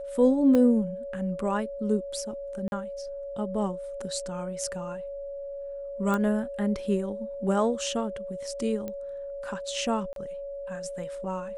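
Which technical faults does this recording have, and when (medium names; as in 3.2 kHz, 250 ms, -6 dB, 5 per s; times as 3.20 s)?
whine 560 Hz -34 dBFS
0.55 s: pop -14 dBFS
2.68–2.72 s: dropout 41 ms
6.14 s: pop -16 dBFS
8.88 s: pop -22 dBFS
10.13–10.16 s: dropout 32 ms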